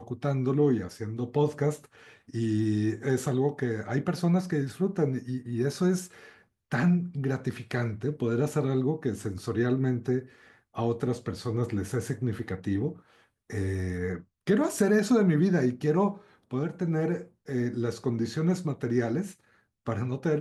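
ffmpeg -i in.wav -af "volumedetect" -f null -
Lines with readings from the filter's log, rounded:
mean_volume: -28.3 dB
max_volume: -12.2 dB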